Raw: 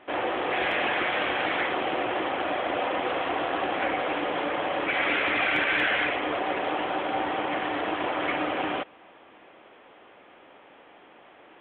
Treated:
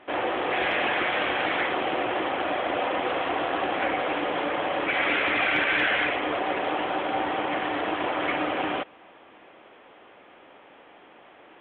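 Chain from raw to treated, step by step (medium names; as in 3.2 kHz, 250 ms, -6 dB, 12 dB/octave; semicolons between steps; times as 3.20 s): brick-wall FIR low-pass 6.4 kHz; trim +1 dB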